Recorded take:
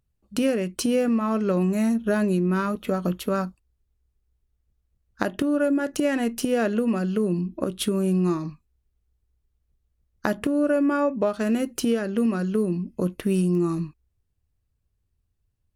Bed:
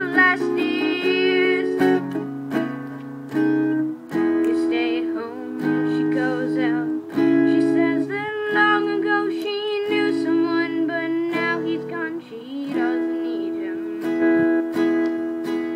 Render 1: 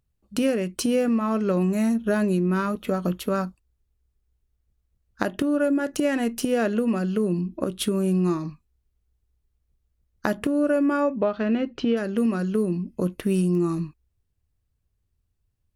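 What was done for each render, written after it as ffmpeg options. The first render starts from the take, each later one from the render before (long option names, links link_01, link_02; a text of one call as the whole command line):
ffmpeg -i in.wav -filter_complex "[0:a]asettb=1/sr,asplit=3[link_01][link_02][link_03];[link_01]atrim=end=11.164[link_04];[link_02]atrim=start=11.16:end=11.97,asetpts=PTS-STARTPTS,afade=type=in:duration=0.004:curve=qsin,afade=type=out:start_time=0.806:duration=0.004:curve=qsin,lowpass=frequency=3900:width=0.5412,lowpass=frequency=3900:width=1.3066[link_05];[link_03]atrim=start=11.966[link_06];[link_04][link_05]acrossfade=duration=0.004:curve1=hsin:curve2=qsin[link_07];[link_07][link_06]acrossfade=duration=0.004:curve1=qsin:curve2=hsin" out.wav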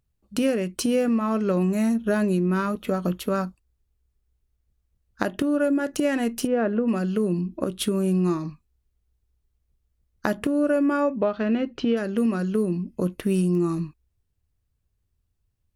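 ffmpeg -i in.wav -filter_complex "[0:a]asplit=3[link_01][link_02][link_03];[link_01]afade=type=out:start_time=6.46:duration=0.02[link_04];[link_02]lowpass=1700,afade=type=in:start_time=6.46:duration=0.02,afade=type=out:start_time=6.87:duration=0.02[link_05];[link_03]afade=type=in:start_time=6.87:duration=0.02[link_06];[link_04][link_05][link_06]amix=inputs=3:normalize=0" out.wav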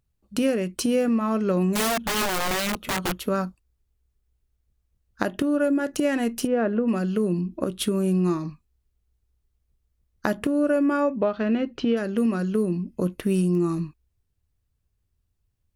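ffmpeg -i in.wav -filter_complex "[0:a]asettb=1/sr,asplit=3[link_01][link_02][link_03];[link_01]atrim=end=1.744[link_04];[link_02]atrim=start=1.74:end=3.15,asetpts=PTS-STARTPTS,afade=type=in:duration=0.004:curve=qsin,afade=type=out:start_time=1.406:duration=0.004:curve=qsin,aeval=exprs='(mod(10.6*val(0)+1,2)-1)/10.6':channel_layout=same[link_05];[link_03]atrim=start=3.146[link_06];[link_04][link_05]acrossfade=duration=0.004:curve1=hsin:curve2=qsin[link_07];[link_07][link_06]acrossfade=duration=0.004:curve1=qsin:curve2=hsin" out.wav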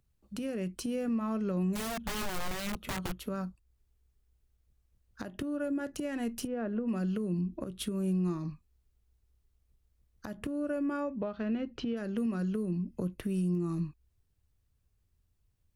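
ffmpeg -i in.wav -filter_complex "[0:a]acrossover=split=150[link_01][link_02];[link_02]acompressor=threshold=-42dB:ratio=2[link_03];[link_01][link_03]amix=inputs=2:normalize=0,alimiter=limit=-24dB:level=0:latency=1:release=248" out.wav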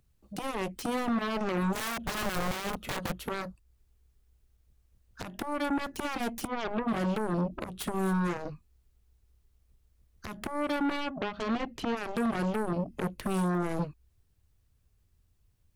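ffmpeg -i in.wav -af "aeval=exprs='0.0668*(cos(1*acos(clip(val(0)/0.0668,-1,1)))-cos(1*PI/2))+0.0266*(cos(7*acos(clip(val(0)/0.0668,-1,1)))-cos(7*PI/2))':channel_layout=same" out.wav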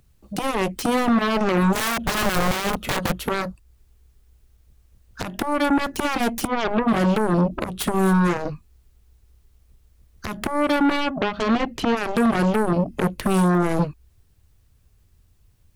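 ffmpeg -i in.wav -af "volume=10.5dB" out.wav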